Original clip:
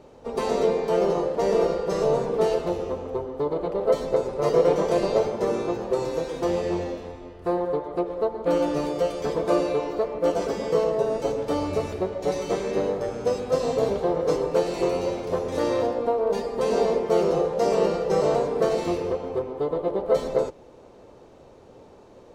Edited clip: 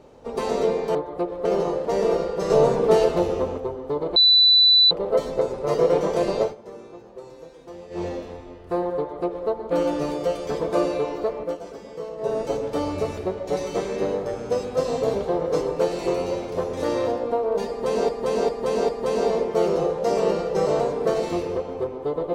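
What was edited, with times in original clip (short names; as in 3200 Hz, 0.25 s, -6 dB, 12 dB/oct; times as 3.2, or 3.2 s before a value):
2–3.08 gain +5 dB
3.66 add tone 3980 Hz -11.5 dBFS 0.75 s
5.16–6.79 dip -15.5 dB, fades 0.14 s
7.73–8.23 copy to 0.95
10.17–11.05 dip -11.5 dB, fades 0.13 s
16.44–16.84 loop, 4 plays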